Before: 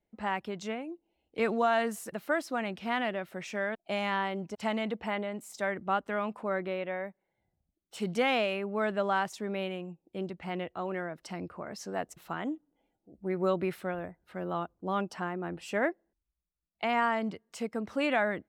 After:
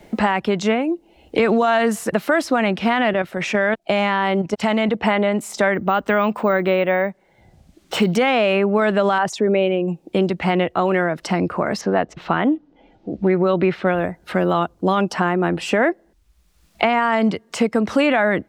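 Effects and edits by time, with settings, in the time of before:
3.13–5.04 s: level held to a coarse grid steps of 9 dB
5.74–8.16 s: careless resampling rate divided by 2×, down filtered, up hold
9.18–9.88 s: resonances exaggerated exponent 1.5
11.81–13.87 s: distance through air 200 m
whole clip: treble shelf 11 kHz -11 dB; loudness maximiser +23.5 dB; three bands compressed up and down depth 70%; trim -7 dB

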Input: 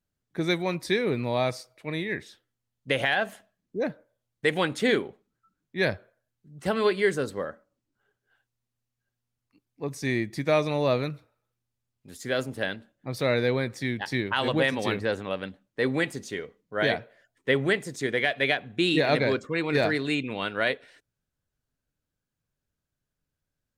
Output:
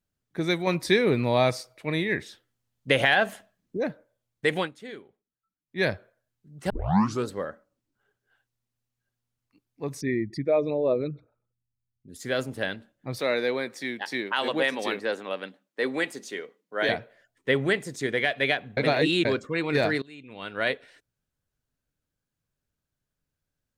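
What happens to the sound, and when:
0.67–3.77 s: gain +4 dB
4.58–5.79 s: dip -17.5 dB, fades 0.13 s
6.70 s: tape start 0.57 s
10.01–12.16 s: resonances exaggerated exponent 2
13.19–16.89 s: Bessel high-pass 300 Hz, order 4
18.77–19.25 s: reverse
20.02–20.68 s: fade in quadratic, from -21.5 dB

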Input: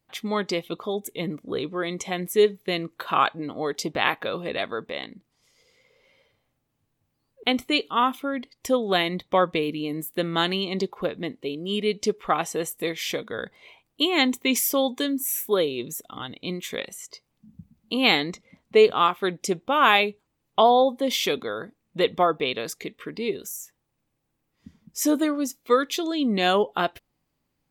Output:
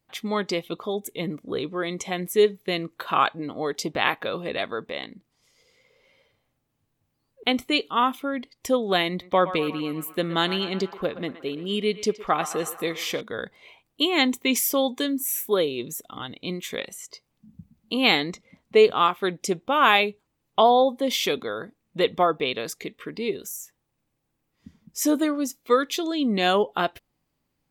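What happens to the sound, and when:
9.09–13.21 s: band-passed feedback delay 119 ms, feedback 69%, band-pass 1.2 kHz, level -11 dB

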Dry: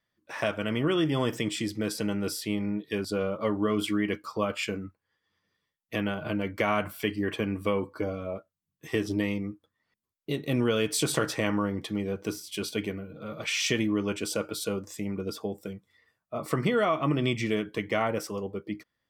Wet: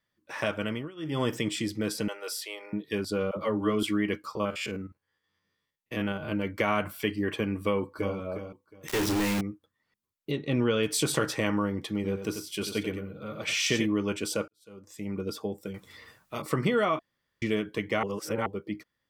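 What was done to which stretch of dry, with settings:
0.64–1.23 s: dip -23 dB, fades 0.27 s
2.08–2.73 s: inverse Chebyshev high-pass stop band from 240 Hz
3.31–3.83 s: phase dispersion lows, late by 61 ms, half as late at 420 Hz
4.35–6.32 s: spectrogram pixelated in time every 50 ms
7.62–8.16 s: echo throw 360 ms, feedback 20%, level -8.5 dB
8.88–9.41 s: companded quantiser 2-bit
10.31–10.83 s: low-pass 4.6 kHz
11.94–13.86 s: delay 92 ms -8 dB
14.48–15.15 s: fade in quadratic
15.74–16.42 s: spectrum-flattening compressor 2:1
16.99–17.42 s: room tone
18.03–18.46 s: reverse
whole clip: band-stop 680 Hz, Q 12

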